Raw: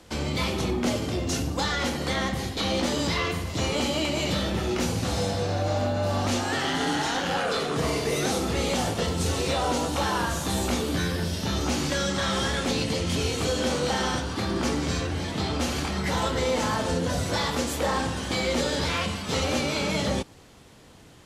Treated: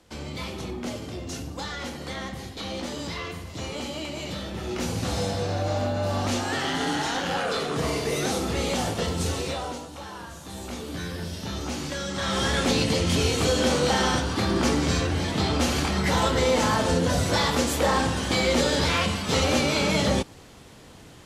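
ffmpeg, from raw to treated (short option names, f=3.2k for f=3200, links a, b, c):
-af "volume=16dB,afade=t=in:st=4.52:d=0.52:silence=0.473151,afade=t=out:st=9.23:d=0.63:silence=0.237137,afade=t=in:st=10.42:d=0.8:silence=0.398107,afade=t=in:st=12.08:d=0.53:silence=0.375837"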